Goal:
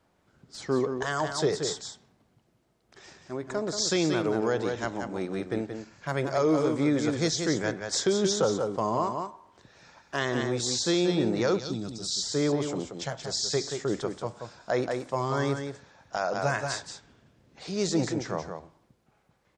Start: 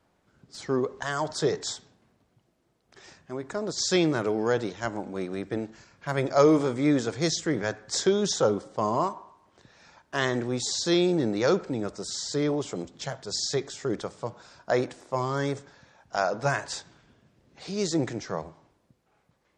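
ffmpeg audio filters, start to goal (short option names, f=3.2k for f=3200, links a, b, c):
-filter_complex "[0:a]asplit=2[a][b];[b]aecho=0:1:179:0.447[c];[a][c]amix=inputs=2:normalize=0,alimiter=limit=-15dB:level=0:latency=1:release=187,asettb=1/sr,asplit=3[d][e][f];[d]atrim=end=11.594[g];[e]atrim=start=11.59:end=12.23,asetpts=PTS-STARTPTS,afade=t=in:d=0.004:c=qsin,afade=t=out:st=0.636:d=0.004:c=qsin,equalizer=f=500:t=o:w=1:g=-11,equalizer=f=1k:t=o:w=1:g=-7,equalizer=f=2k:t=o:w=1:g=-12,equalizer=f=4k:t=o:w=1:g=9[h];[f]atrim=start=12.226[i];[g][h]acrossfade=d=0.004:c1=hsin:c2=qsin[j];[j][i]acrossfade=d=0.004:c1=qsin:c2=hsin"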